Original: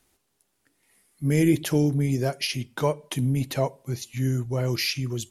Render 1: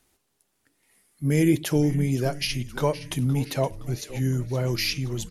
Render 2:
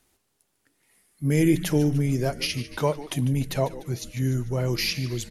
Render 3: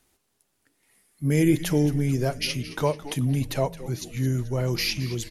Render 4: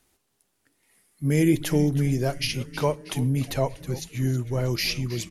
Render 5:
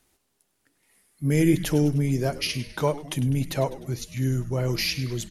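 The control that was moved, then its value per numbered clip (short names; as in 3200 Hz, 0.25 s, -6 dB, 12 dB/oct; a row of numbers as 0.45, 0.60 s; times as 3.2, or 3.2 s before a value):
frequency-shifting echo, time: 0.518, 0.148, 0.218, 0.319, 0.101 s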